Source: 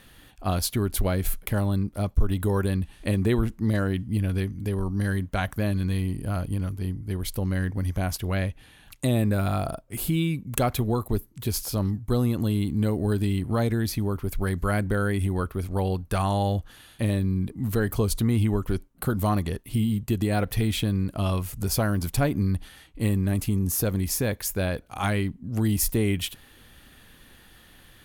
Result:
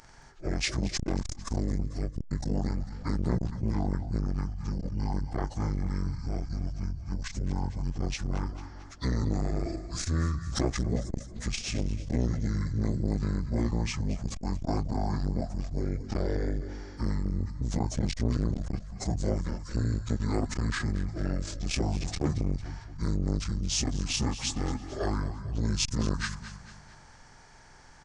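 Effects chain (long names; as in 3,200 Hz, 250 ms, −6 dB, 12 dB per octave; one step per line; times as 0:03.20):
phase-vocoder pitch shift without resampling −12 semitones
repeating echo 224 ms, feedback 45%, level −14 dB
saturating transformer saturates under 350 Hz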